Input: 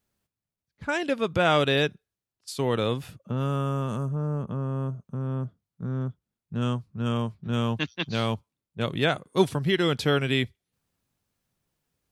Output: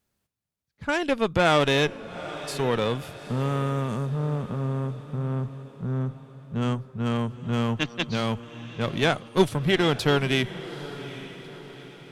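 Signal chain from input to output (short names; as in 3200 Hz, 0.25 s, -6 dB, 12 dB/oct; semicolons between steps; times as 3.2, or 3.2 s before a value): added harmonics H 6 -21 dB, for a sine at -8 dBFS; on a send: diffused feedback echo 0.834 s, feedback 48%, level -14.5 dB; on the sum: gain +1.5 dB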